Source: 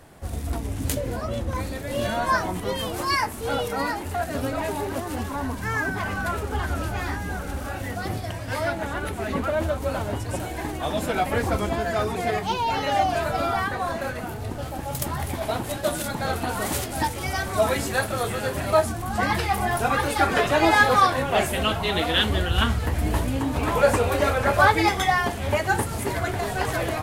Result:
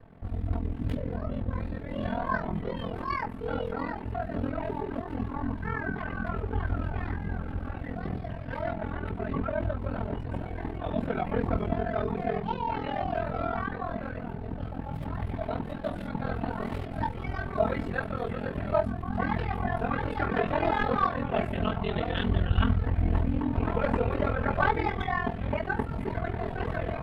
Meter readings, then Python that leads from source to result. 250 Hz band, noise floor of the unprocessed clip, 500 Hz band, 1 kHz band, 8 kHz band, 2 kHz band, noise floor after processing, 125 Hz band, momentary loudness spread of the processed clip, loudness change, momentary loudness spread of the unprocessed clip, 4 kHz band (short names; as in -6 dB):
-3.0 dB, -33 dBFS, -6.5 dB, -8.0 dB, under -30 dB, -10.0 dB, -37 dBFS, -2.5 dB, 8 LU, -6.5 dB, 10 LU, -16.0 dB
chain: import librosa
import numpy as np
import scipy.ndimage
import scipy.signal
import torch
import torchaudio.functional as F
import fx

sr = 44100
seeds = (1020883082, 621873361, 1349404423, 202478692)

y = np.minimum(x, 2.0 * 10.0 ** (-10.5 / 20.0) - x)
y = fx.bass_treble(y, sr, bass_db=7, treble_db=1)
y = fx.hum_notches(y, sr, base_hz=50, count=4)
y = y + 0.44 * np.pad(y, (int(4.5 * sr / 1000.0), 0))[:len(y)]
y = y * np.sin(2.0 * np.pi * 21.0 * np.arange(len(y)) / sr)
y = fx.air_absorb(y, sr, metres=460.0)
y = y * 10.0 ** (-3.5 / 20.0)